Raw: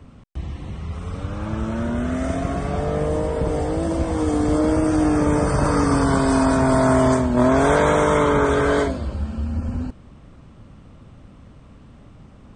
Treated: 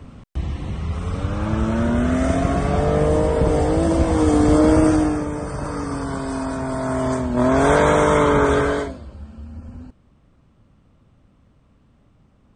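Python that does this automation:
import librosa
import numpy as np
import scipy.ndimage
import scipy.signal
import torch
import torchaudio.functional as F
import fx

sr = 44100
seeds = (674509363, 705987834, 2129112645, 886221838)

y = fx.gain(x, sr, db=fx.line((4.87, 4.5), (5.3, -8.0), (6.78, -8.0), (7.7, 1.5), (8.57, 1.5), (9.05, -11.0)))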